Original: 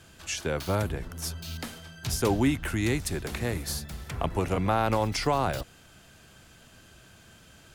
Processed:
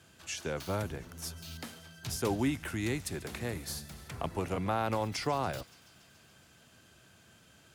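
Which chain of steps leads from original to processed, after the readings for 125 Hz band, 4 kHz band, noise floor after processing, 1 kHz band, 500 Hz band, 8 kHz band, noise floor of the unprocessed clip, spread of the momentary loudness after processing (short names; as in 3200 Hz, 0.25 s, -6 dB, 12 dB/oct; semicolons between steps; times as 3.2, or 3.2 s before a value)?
-7.5 dB, -6.0 dB, -61 dBFS, -6.0 dB, -6.0 dB, -6.0 dB, -55 dBFS, 12 LU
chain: HPF 83 Hz; on a send: thin delay 0.142 s, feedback 77%, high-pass 2900 Hz, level -18 dB; on the sum: gain -6 dB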